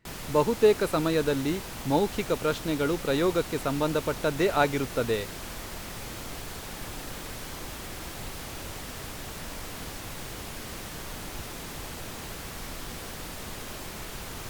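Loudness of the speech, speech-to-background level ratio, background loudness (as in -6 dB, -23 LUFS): -27.0 LUFS, 11.0 dB, -38.0 LUFS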